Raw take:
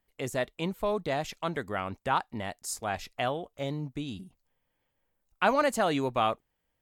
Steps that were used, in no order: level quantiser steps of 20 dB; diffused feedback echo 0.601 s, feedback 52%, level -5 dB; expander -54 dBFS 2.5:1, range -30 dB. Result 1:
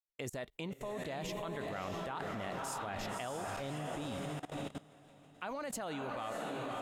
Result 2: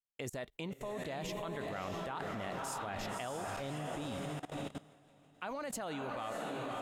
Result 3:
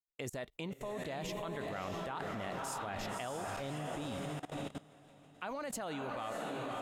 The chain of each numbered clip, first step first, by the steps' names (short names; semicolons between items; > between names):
diffused feedback echo > expander > level quantiser; diffused feedback echo > level quantiser > expander; expander > diffused feedback echo > level quantiser